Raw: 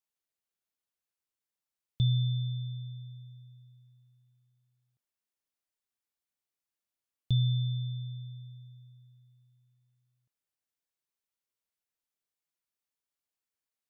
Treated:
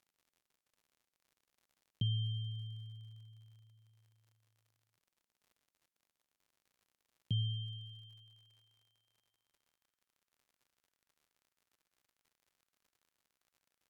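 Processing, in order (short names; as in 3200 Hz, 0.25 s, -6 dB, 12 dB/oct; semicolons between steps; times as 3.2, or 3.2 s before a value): high-pass sweep 200 Hz -> 1500 Hz, 7.39–9.97; crackle 89/s -56 dBFS; pitch shift -2 st; gain -3.5 dB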